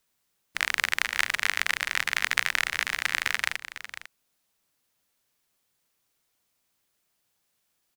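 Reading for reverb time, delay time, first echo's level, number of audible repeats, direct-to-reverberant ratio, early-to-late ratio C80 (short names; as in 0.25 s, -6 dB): none, 0.5 s, -12.5 dB, 1, none, none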